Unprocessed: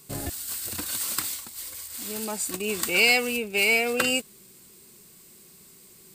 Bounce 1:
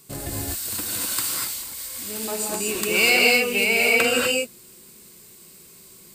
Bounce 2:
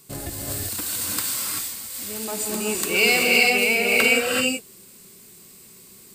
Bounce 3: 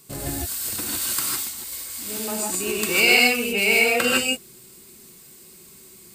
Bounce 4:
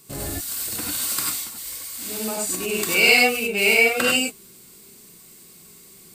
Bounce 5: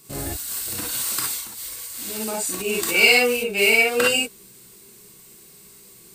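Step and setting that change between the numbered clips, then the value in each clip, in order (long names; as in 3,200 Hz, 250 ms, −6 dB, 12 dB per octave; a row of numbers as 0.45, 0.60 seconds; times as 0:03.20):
reverb whose tail is shaped and stops, gate: 270, 410, 180, 120, 80 milliseconds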